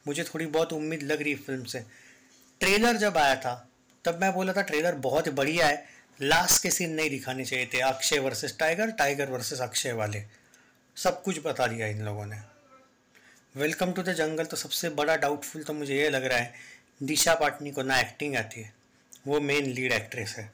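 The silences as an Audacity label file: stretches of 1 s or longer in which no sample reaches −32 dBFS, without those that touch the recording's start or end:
12.340000	13.570000	silence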